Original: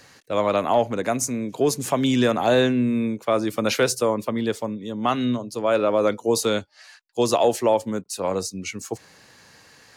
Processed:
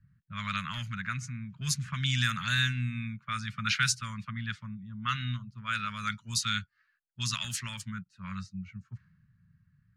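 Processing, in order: low-pass opened by the level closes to 310 Hz, open at -14.5 dBFS; elliptic band-stop 170–1400 Hz, stop band 40 dB

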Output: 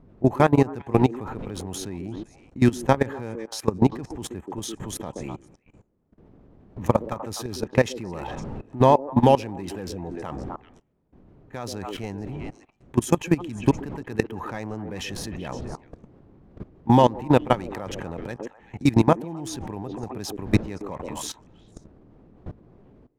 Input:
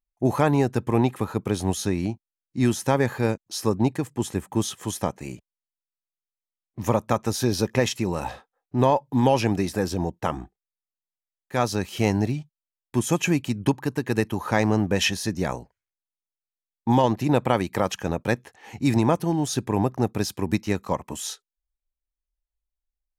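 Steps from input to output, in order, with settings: Wiener smoothing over 9 samples; wind noise 260 Hz -40 dBFS; delay with a stepping band-pass 0.128 s, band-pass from 360 Hz, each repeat 1.4 oct, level -7.5 dB; level quantiser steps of 19 dB; gain +5 dB

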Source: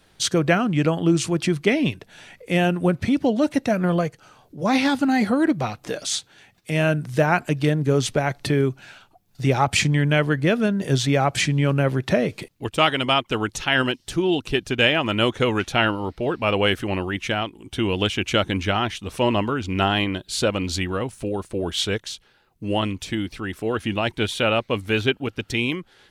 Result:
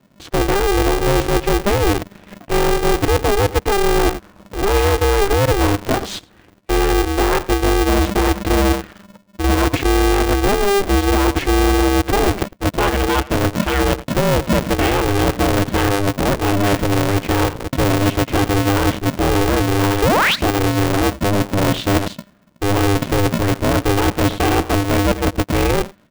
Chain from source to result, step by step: painted sound rise, 20.02–20.36, 210–4400 Hz -10 dBFS; high shelf 3700 Hz -9.5 dB; AGC gain up to 10.5 dB; RIAA curve playback; on a send: echo 0.104 s -18 dB; on the sum: sample leveller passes 2; reverse; compressor 5:1, threshold -9 dBFS, peak gain reduction 11 dB; reverse; polarity switched at an audio rate 200 Hz; gain -5 dB

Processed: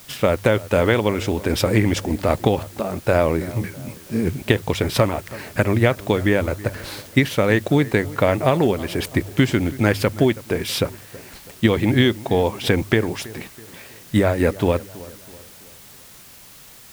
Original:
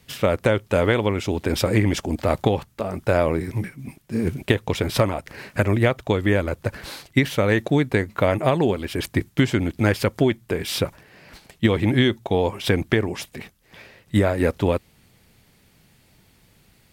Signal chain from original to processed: de-hum 49.76 Hz, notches 2; added noise white -47 dBFS; analogue delay 0.326 s, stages 4096, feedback 45%, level -19 dB; gain +2 dB

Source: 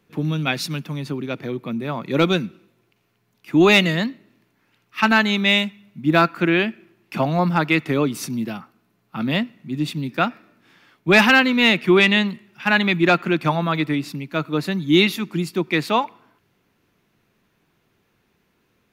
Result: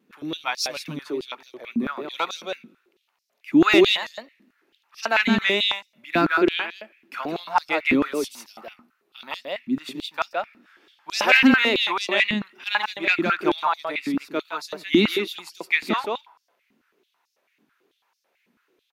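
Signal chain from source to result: echo 0.165 s -5 dB; vibrato 3.6 Hz 46 cents; stepped high-pass 9.1 Hz 240–5300 Hz; gain -6.5 dB

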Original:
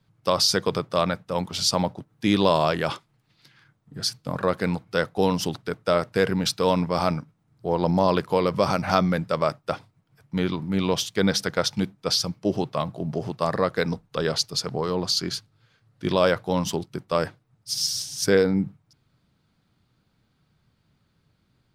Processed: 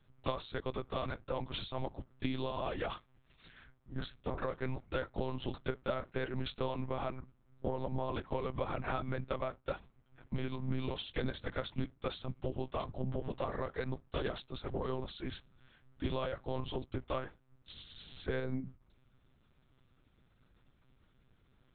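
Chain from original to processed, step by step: compressor 16:1, threshold -31 dBFS, peak gain reduction 18 dB; flange 1.3 Hz, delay 4.2 ms, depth 9 ms, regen -38%; monotone LPC vocoder at 8 kHz 130 Hz; gain +3 dB

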